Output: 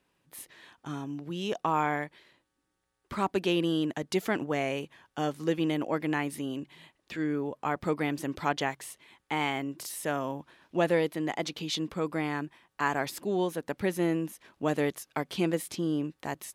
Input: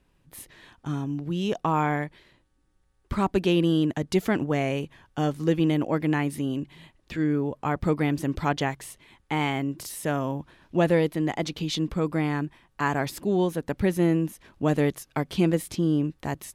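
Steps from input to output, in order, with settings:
high-pass filter 380 Hz 6 dB per octave
level −1.5 dB

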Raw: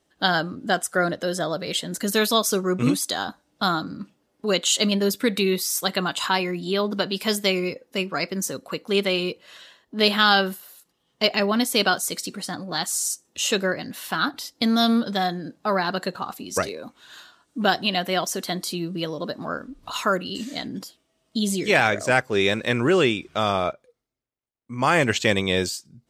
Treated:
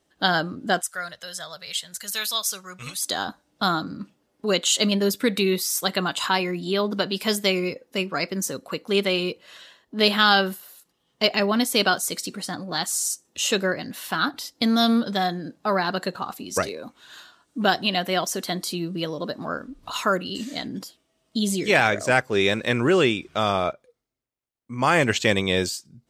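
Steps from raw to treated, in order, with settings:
0:00.81–0:03.03: guitar amp tone stack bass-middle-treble 10-0-10

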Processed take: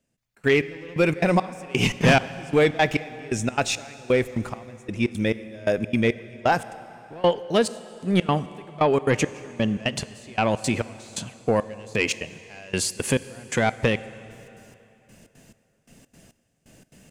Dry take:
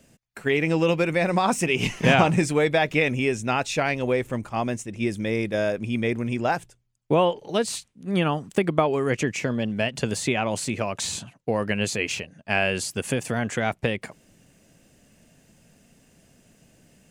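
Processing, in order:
soft clipping −14.5 dBFS, distortion −16 dB
gate pattern "..xx.xx.." 172 BPM −24 dB
convolution reverb RT60 3.2 s, pre-delay 3 ms, DRR 15 dB
level +5 dB

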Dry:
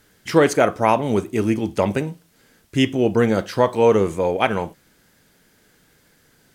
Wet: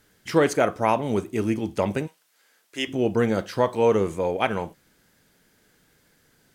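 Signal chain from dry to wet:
0:02.06–0:02.87: high-pass filter 1,100 Hz → 460 Hz 12 dB per octave
level −4.5 dB

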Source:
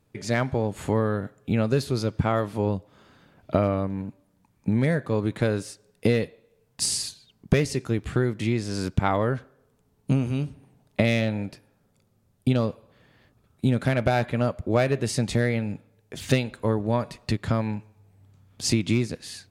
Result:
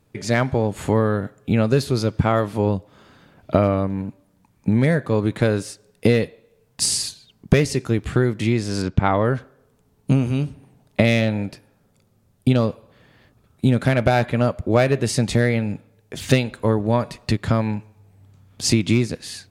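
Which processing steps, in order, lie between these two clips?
0:08.82–0:09.25: high-frequency loss of the air 130 metres
level +5 dB

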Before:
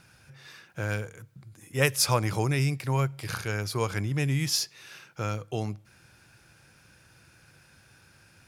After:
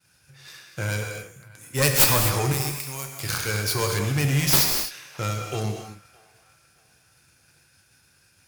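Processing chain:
stylus tracing distortion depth 0.27 ms
0:02.52–0:03.20: first-order pre-emphasis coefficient 0.8
downward expander −51 dBFS
high-shelf EQ 3,600 Hz +11 dB
leveller curve on the samples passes 1
asymmetric clip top −21 dBFS
on a send: delay with a band-pass on its return 617 ms, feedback 32%, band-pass 1,300 Hz, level −21 dB
on the sum: reverb whose tail is shaped and stops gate 280 ms flat, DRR 2.5 dB

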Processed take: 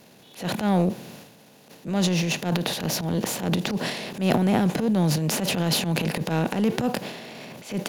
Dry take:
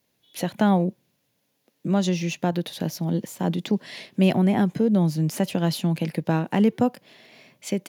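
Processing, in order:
compressor on every frequency bin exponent 0.6
transient designer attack −12 dB, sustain +9 dB
level −3 dB

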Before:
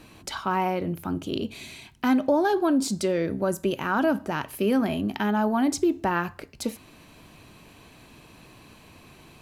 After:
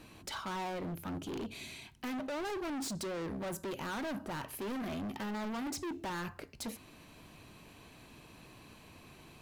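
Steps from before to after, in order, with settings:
gain into a clipping stage and back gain 31.5 dB
level −5 dB

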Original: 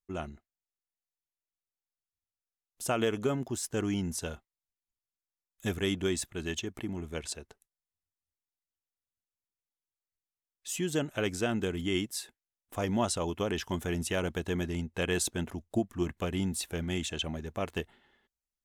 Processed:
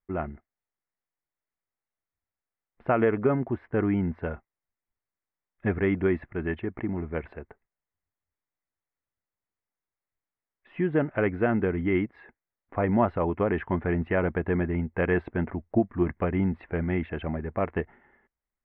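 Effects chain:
elliptic low-pass filter 2,100 Hz, stop band 70 dB
level +7 dB

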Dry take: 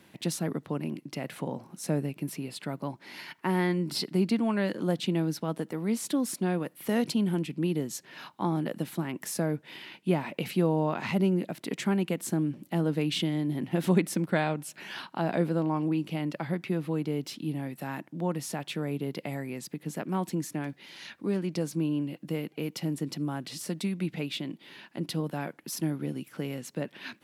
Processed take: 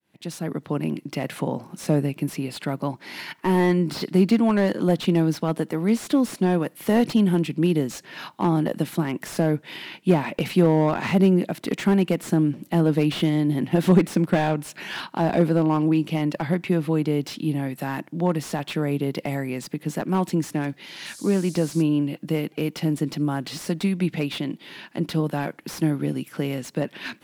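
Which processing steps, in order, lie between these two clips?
fade in at the beginning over 0.88 s
0:21.05–0:21.81: noise in a band 4,100–11,000 Hz −51 dBFS
slew-rate limiting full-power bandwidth 44 Hz
level +8 dB

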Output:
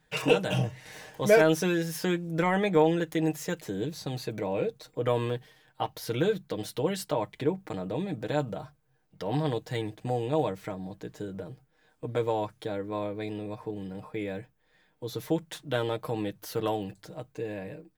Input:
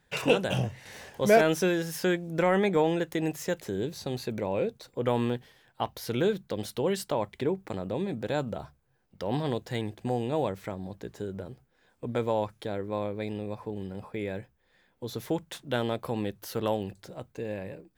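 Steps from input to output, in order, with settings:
comb filter 6.5 ms
level −1.5 dB

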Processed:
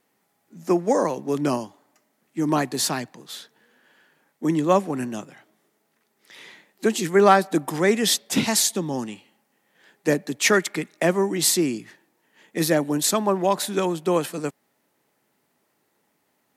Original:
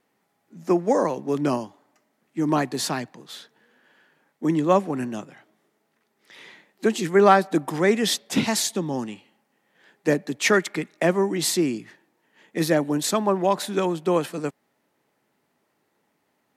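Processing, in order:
high-shelf EQ 5,900 Hz +8 dB

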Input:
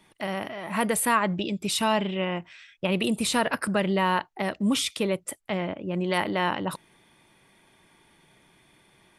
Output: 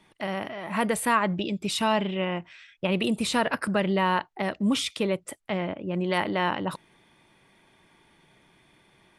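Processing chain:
high-shelf EQ 9,800 Hz −12 dB

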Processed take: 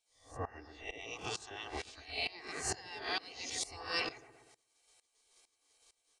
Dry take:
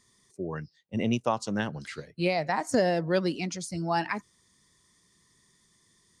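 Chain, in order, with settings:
peak hold with a rise ahead of every peak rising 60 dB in 0.49 s
low-pass filter 7,100 Hz 12 dB per octave
gate on every frequency bin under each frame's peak −15 dB weak
parametric band 1,400 Hz −9 dB 0.54 octaves
comb filter 2.6 ms, depth 54%
0:01.01–0:03.63: downward compressor, threshold −40 dBFS, peak gain reduction 10 dB
delay with a low-pass on its return 122 ms, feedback 36%, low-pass 1,600 Hz, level −9 dB
tremolo with a ramp in dB swelling 2.2 Hz, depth 19 dB
level +8.5 dB

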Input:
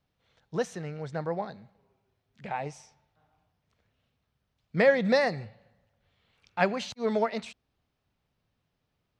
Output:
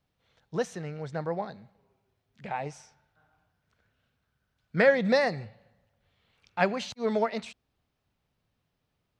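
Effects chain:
0:02.71–0:04.89: parametric band 1,500 Hz +13 dB 0.22 octaves

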